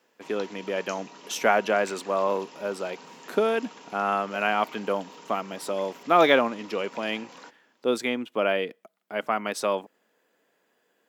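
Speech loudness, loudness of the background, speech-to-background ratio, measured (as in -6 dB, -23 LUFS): -27.0 LUFS, -45.5 LUFS, 18.5 dB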